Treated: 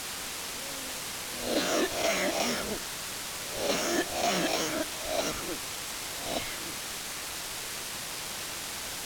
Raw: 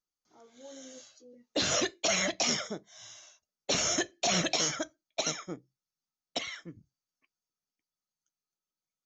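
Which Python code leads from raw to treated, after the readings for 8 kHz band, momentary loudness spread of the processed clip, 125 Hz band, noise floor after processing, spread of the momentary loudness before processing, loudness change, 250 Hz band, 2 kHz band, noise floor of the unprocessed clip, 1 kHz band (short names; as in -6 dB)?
+0.5 dB, 7 LU, -0.5 dB, -38 dBFS, 21 LU, -1.5 dB, +3.5 dB, +3.0 dB, under -85 dBFS, +4.5 dB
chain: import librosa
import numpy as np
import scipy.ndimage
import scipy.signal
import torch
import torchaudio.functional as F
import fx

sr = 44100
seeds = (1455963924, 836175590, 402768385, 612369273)

p1 = fx.spec_swells(x, sr, rise_s=0.62)
p2 = scipy.signal.sosfilt(scipy.signal.butter(4, 200.0, 'highpass', fs=sr, output='sos'), p1)
p3 = fx.high_shelf(p2, sr, hz=2600.0, db=-8.5)
p4 = fx.schmitt(p3, sr, flips_db=-33.0)
p5 = p3 + (p4 * librosa.db_to_amplitude(-8.5))
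p6 = fx.quant_dither(p5, sr, seeds[0], bits=6, dither='triangular')
y = np.interp(np.arange(len(p6)), np.arange(len(p6))[::2], p6[::2])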